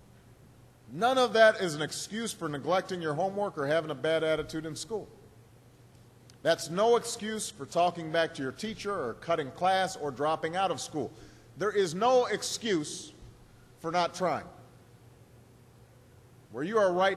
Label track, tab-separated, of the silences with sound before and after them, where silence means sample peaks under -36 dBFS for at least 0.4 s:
5.040000	6.300000	silence
11.070000	11.610000	silence
13.080000	13.840000	silence
14.420000	16.550000	silence